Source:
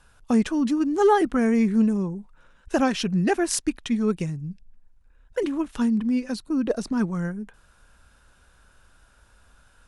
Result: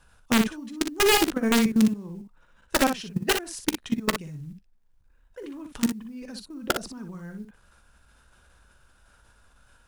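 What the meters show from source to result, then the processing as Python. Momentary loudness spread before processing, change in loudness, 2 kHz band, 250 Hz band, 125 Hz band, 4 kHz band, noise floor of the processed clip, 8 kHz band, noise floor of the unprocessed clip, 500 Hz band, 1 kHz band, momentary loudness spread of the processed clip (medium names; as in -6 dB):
11 LU, -1.0 dB, +4.0 dB, -4.0 dB, -5.5 dB, +7.5 dB, -61 dBFS, +2.5 dB, -58 dBFS, -4.0 dB, -2.5 dB, 20 LU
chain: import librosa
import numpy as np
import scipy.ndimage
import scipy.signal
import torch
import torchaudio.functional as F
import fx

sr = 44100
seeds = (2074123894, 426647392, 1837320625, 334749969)

p1 = fx.level_steps(x, sr, step_db=20)
p2 = (np.mod(10.0 ** (15.0 / 20.0) * p1 + 1.0, 2.0) - 1.0) / 10.0 ** (15.0 / 20.0)
p3 = fx.quant_float(p2, sr, bits=4)
p4 = p3 + fx.room_early_taps(p3, sr, ms=(14, 43, 59), db=(-17.0, -16.0, -7.0), dry=0)
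y = F.gain(torch.from_numpy(p4), 1.5).numpy()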